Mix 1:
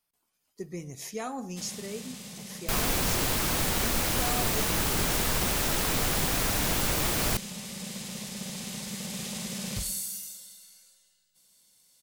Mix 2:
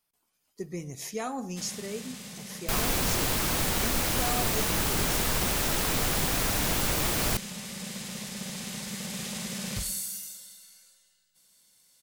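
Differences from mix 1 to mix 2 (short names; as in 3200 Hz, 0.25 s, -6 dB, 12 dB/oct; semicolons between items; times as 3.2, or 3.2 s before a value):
speech: send +8.0 dB; first sound: add bell 1600 Hz +4 dB 1 oct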